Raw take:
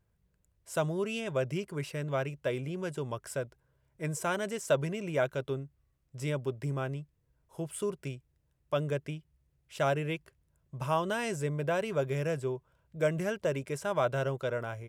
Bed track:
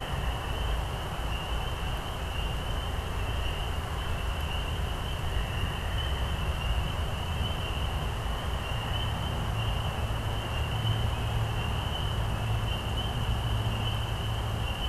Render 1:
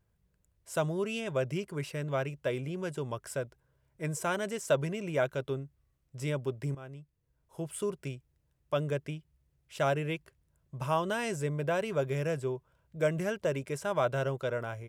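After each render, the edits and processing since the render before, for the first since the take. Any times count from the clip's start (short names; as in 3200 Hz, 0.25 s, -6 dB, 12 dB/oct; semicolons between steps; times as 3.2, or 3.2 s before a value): 6.75–7.68 fade in linear, from -14.5 dB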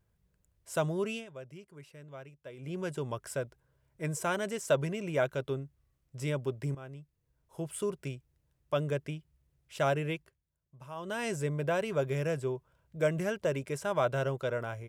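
1.1–2.74 dip -15 dB, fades 0.17 s; 10.1–11.27 dip -14.5 dB, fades 0.32 s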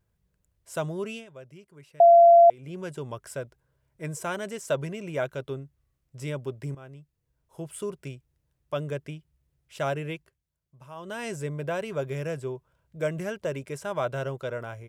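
2–2.5 bleep 684 Hz -10.5 dBFS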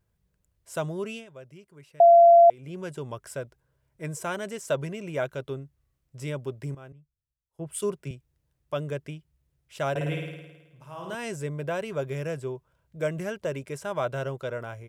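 6.92–8.11 three-band expander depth 100%; 9.9–11.15 flutter echo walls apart 9.2 m, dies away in 1.1 s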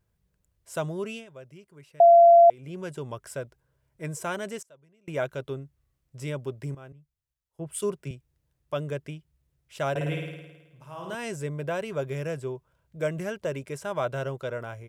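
4.61–5.08 flipped gate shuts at -32 dBFS, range -28 dB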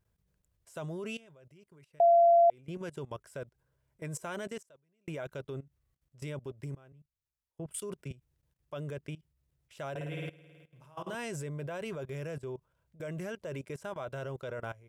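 level quantiser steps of 19 dB; limiter -18 dBFS, peak gain reduction 4.5 dB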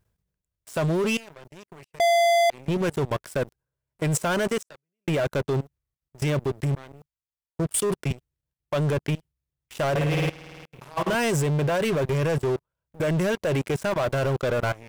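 sample leveller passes 5; reverse; upward compressor, threshold -46 dBFS; reverse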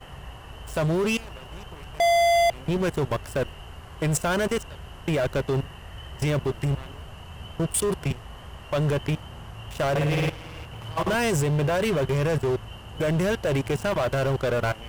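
add bed track -9.5 dB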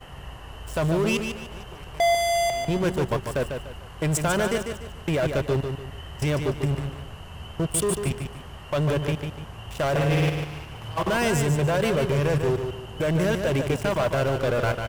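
feedback echo 0.147 s, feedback 33%, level -6.5 dB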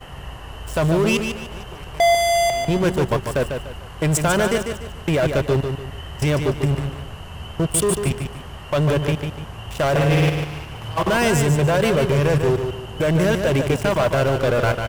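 gain +5 dB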